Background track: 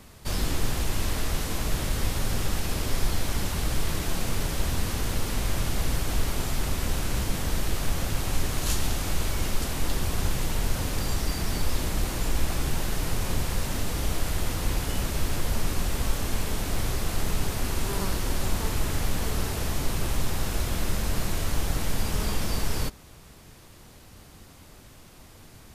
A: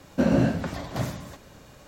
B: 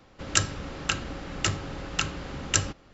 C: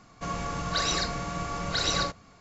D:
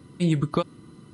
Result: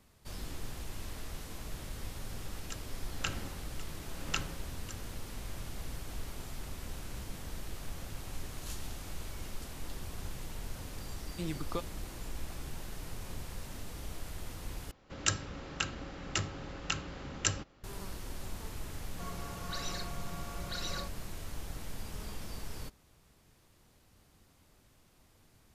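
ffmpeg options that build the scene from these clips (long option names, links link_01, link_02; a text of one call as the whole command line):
ffmpeg -i bed.wav -i cue0.wav -i cue1.wav -i cue2.wav -i cue3.wav -filter_complex "[2:a]asplit=2[link_01][link_02];[0:a]volume=-15dB[link_03];[link_01]aeval=exprs='val(0)*pow(10,-19*(0.5-0.5*cos(2*PI*1*n/s))/20)':channel_layout=same[link_04];[4:a]lowshelf=frequency=180:gain=-12[link_05];[3:a]aecho=1:1:5.6:0.49[link_06];[link_03]asplit=2[link_07][link_08];[link_07]atrim=end=14.914[link_09];[link_02]atrim=end=2.93,asetpts=PTS-STARTPTS,volume=-7dB[link_10];[link_08]atrim=start=17.836[link_11];[link_04]atrim=end=2.93,asetpts=PTS-STARTPTS,volume=-7dB,afade=type=in:duration=0.004:curve=hsin,afade=type=out:start_time=2.926:duration=0.004:curve=hsin,adelay=2350[link_12];[link_05]atrim=end=1.13,asetpts=PTS-STARTPTS,volume=-11dB,afade=type=in:duration=0.004:curve=hsin,afade=type=out:start_time=1.126:duration=0.004:curve=hsin,adelay=11180[link_13];[link_06]atrim=end=2.4,asetpts=PTS-STARTPTS,volume=-14dB,afade=type=in:duration=0.004:curve=hsin,afade=type=out:start_time=2.396:duration=0.004:curve=hsin,adelay=18970[link_14];[link_09][link_10]acrossfade=duration=0.004:curve1=hsin:curve2=hsin[link_15];[link_15][link_11]acrossfade=duration=0.004:curve1=hsin:curve2=hsin[link_16];[link_16][link_12][link_13][link_14]amix=inputs=4:normalize=0" out.wav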